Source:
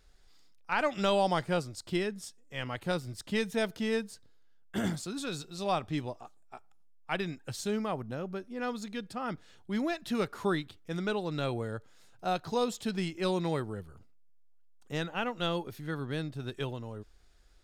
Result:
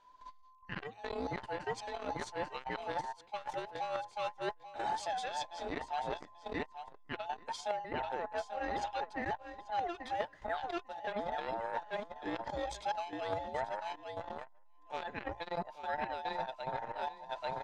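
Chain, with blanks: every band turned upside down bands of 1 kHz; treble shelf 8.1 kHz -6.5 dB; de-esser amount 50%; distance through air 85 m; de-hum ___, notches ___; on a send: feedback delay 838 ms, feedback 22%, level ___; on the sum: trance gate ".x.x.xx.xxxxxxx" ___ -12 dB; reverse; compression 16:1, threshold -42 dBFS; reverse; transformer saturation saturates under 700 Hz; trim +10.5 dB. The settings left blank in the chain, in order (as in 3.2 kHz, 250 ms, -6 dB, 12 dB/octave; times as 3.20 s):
56.38 Hz, 2, -10 dB, 72 bpm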